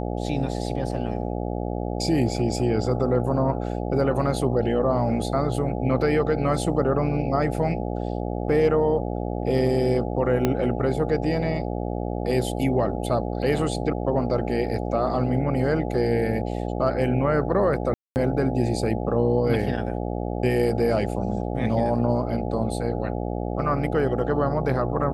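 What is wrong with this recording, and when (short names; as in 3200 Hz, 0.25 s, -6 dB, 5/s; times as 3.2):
buzz 60 Hz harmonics 14 -28 dBFS
10.45 pop -8 dBFS
17.94–18.16 gap 0.219 s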